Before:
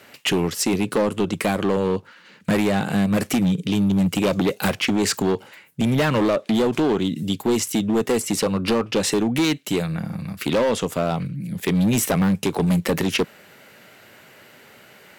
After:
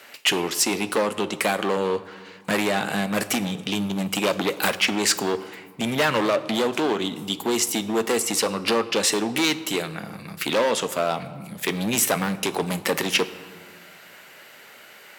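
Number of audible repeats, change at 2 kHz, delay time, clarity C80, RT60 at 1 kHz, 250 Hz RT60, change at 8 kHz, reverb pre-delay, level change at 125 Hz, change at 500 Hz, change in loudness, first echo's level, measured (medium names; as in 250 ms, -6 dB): no echo, +2.5 dB, no echo, 16.5 dB, 1.9 s, 2.4 s, +3.0 dB, 9 ms, -10.0 dB, -2.0 dB, -2.0 dB, no echo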